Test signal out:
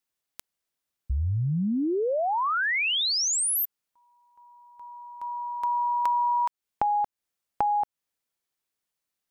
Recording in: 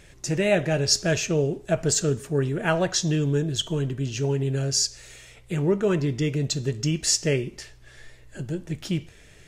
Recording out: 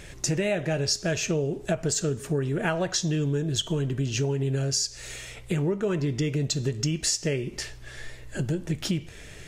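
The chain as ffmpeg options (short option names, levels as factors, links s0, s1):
-af "acompressor=threshold=0.0282:ratio=6,volume=2.24"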